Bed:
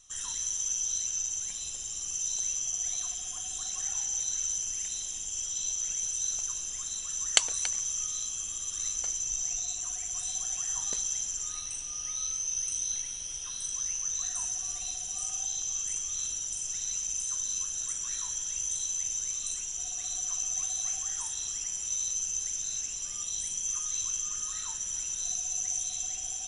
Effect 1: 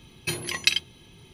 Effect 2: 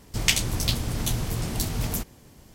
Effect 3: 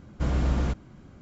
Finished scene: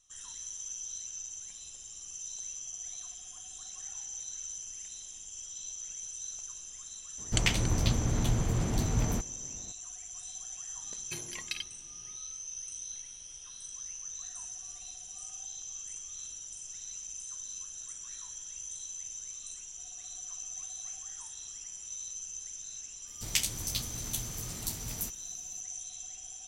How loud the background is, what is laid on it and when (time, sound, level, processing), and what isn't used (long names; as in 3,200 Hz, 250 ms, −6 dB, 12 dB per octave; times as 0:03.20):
bed −9.5 dB
0:07.18: mix in 2 −0.5 dB + low-pass filter 1,600 Hz 6 dB per octave
0:10.84: mix in 1 −13 dB + brickwall limiter −7.5 dBFS
0:23.07: mix in 2 −14.5 dB + high-shelf EQ 3,400 Hz +11 dB
not used: 3